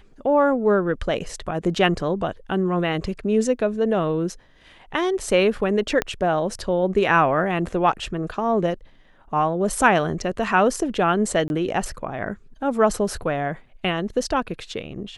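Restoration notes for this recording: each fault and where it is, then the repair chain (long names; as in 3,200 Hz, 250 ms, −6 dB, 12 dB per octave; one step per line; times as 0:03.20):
0:06.02: click −8 dBFS
0:11.48–0:11.50: drop-out 21 ms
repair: click removal
repair the gap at 0:11.48, 21 ms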